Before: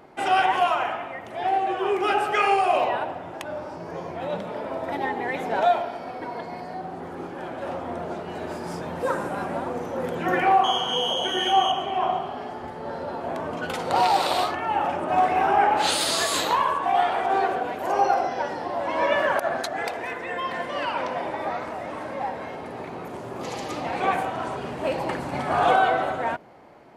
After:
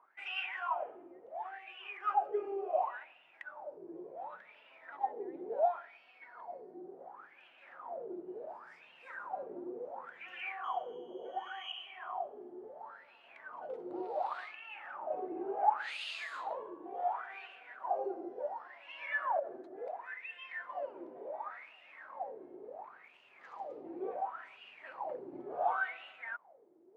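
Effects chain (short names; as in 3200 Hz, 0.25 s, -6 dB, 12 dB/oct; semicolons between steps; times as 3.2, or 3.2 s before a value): wah 0.7 Hz 340–2800 Hz, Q 12; gain -1.5 dB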